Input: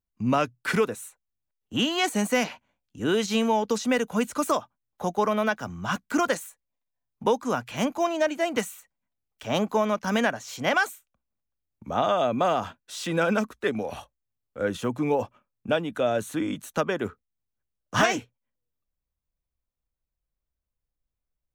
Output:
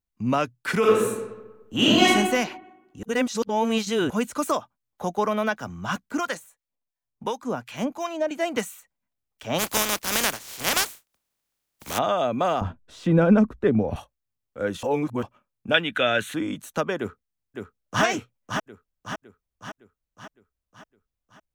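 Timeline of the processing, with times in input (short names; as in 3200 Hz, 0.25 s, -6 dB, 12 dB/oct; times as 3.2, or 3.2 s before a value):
0.79–2.08 reverb throw, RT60 1.1 s, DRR -7.5 dB
3.03–4.1 reverse
6.09–8.31 harmonic tremolo 2.8 Hz, crossover 890 Hz
9.58–11.97 spectral contrast lowered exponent 0.27
12.61–13.96 tilt -4.5 dB/oct
14.83–15.23 reverse
15.74–16.34 band shelf 2300 Hz +14 dB
16.98–18.03 echo throw 0.56 s, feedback 55%, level -5.5 dB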